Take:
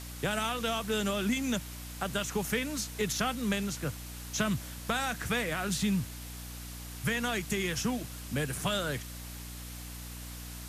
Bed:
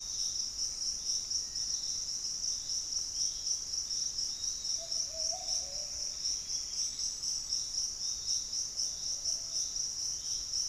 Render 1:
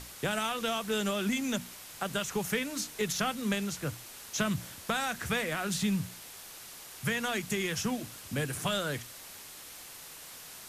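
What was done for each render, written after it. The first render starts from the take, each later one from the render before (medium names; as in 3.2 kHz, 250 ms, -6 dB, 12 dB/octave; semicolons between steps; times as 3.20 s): hum notches 60/120/180/240/300 Hz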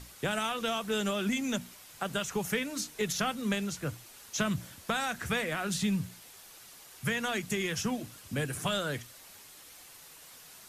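noise reduction 6 dB, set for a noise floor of -48 dBFS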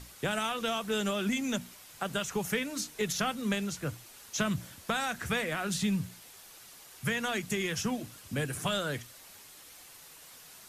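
no audible change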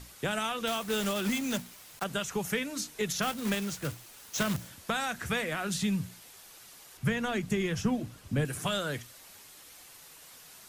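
0.67–2.06 s: block-companded coder 3-bit; 3.22–4.70 s: block-companded coder 3-bit; 6.97–8.45 s: tilt EQ -2 dB/octave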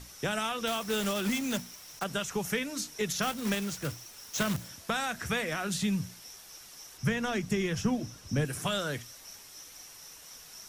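add bed -16 dB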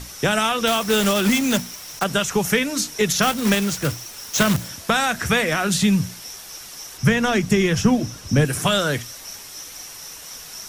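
trim +12 dB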